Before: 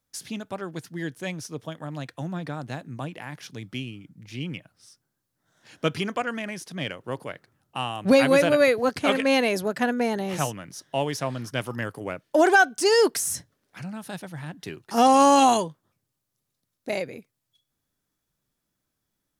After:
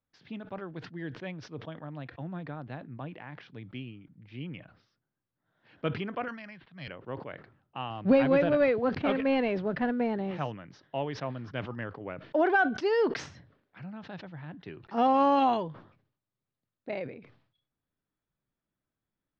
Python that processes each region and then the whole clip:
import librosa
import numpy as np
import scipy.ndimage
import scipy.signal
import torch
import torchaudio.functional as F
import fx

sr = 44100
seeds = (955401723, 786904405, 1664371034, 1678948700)

y = fx.chain(x, sr, fx.peak_eq(hz=390.0, db=-13.5, octaves=1.7),
    fx.resample_bad(factor=6, down='filtered', up='hold'),
    fx.band_widen(depth_pct=40), at=(6.28, 6.88))
y = fx.chain(y, sr, fx.cvsd(bps=64000),
    fx.low_shelf(hz=340.0, db=5.5), at=(7.9, 10.31))
y = scipy.signal.sosfilt(scipy.signal.bessel(8, 2400.0, 'lowpass', norm='mag', fs=sr, output='sos'), y)
y = fx.sustainer(y, sr, db_per_s=100.0)
y = y * librosa.db_to_amplitude(-6.5)